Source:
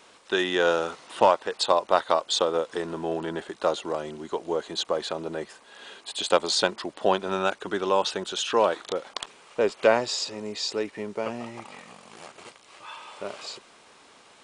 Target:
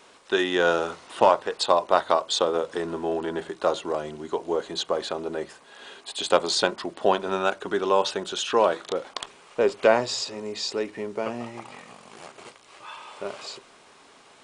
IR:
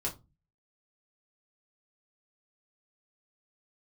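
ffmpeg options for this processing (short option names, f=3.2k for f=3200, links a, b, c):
-filter_complex "[0:a]asplit=2[a][b];[1:a]atrim=start_sample=2205,lowpass=2.4k[c];[b][c]afir=irnorm=-1:irlink=0,volume=-13.5dB[d];[a][d]amix=inputs=2:normalize=0"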